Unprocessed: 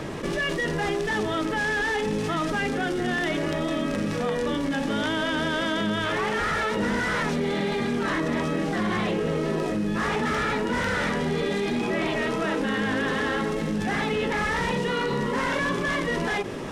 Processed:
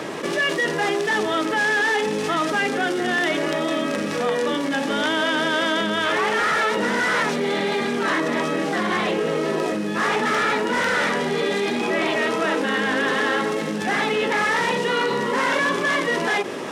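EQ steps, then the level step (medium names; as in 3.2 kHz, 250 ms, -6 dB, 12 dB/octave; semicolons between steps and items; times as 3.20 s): Bessel high-pass 330 Hz, order 2; +6.0 dB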